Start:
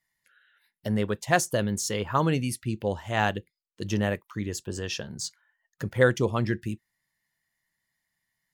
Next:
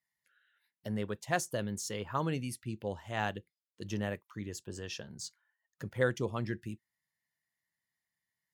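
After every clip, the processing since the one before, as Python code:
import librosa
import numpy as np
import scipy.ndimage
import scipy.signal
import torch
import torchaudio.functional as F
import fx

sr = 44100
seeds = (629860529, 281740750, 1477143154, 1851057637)

y = scipy.signal.sosfilt(scipy.signal.butter(2, 59.0, 'highpass', fs=sr, output='sos'), x)
y = y * 10.0 ** (-9.0 / 20.0)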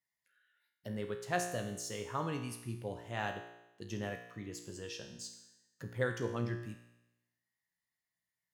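y = fx.comb_fb(x, sr, f0_hz=59.0, decay_s=0.93, harmonics='all', damping=0.0, mix_pct=80)
y = y * 10.0 ** (6.5 / 20.0)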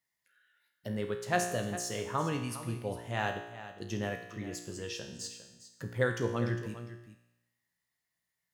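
y = x + 10.0 ** (-13.5 / 20.0) * np.pad(x, (int(405 * sr / 1000.0), 0))[:len(x)]
y = y * 10.0 ** (4.5 / 20.0)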